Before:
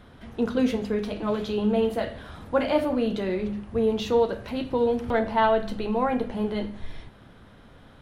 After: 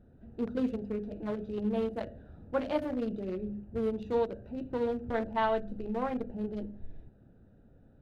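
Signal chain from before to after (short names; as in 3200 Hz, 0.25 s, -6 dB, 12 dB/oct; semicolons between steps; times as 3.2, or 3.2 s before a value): Wiener smoothing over 41 samples; gain -7 dB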